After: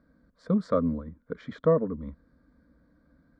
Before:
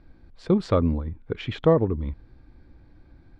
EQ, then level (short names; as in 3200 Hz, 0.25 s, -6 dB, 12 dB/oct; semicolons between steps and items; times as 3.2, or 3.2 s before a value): HPF 87 Hz 12 dB/oct; high shelf 3400 Hz -8 dB; fixed phaser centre 540 Hz, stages 8; -1.5 dB